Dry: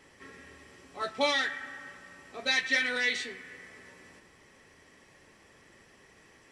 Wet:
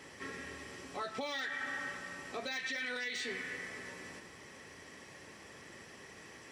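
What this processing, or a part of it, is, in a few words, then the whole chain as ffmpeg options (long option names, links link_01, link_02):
broadcast voice chain: -af "highpass=72,deesser=0.9,acompressor=threshold=-37dB:ratio=6,equalizer=frequency=5400:width_type=o:width=0.77:gain=2,alimiter=level_in=11.5dB:limit=-24dB:level=0:latency=1:release=76,volume=-11.5dB,volume=5.5dB"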